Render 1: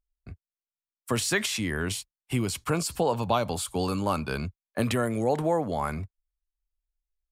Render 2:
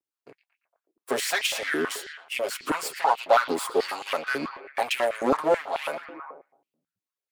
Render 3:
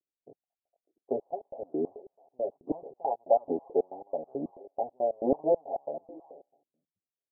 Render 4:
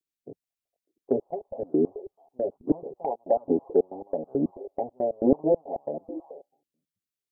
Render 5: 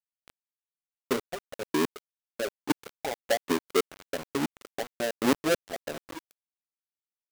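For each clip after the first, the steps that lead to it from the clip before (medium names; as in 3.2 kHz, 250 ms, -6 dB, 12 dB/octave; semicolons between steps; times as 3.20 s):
comb filter that takes the minimum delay 7.3 ms; repeats whose band climbs or falls 115 ms, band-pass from 3.6 kHz, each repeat -0.7 oct, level -9 dB; step-sequenced high-pass 9.2 Hz 320–2600 Hz
steep low-pass 780 Hz 72 dB/octave; trim -2.5 dB
spectral noise reduction 12 dB; in parallel at +1 dB: compression, threshold -36 dBFS, peak gain reduction 17.5 dB; on the sum: peaking EQ 740 Hz -12.5 dB 1.3 oct; trim +8.5 dB
square wave that keeps the level; high-pass 110 Hz 12 dB/octave; small samples zeroed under -28 dBFS; trim -6.5 dB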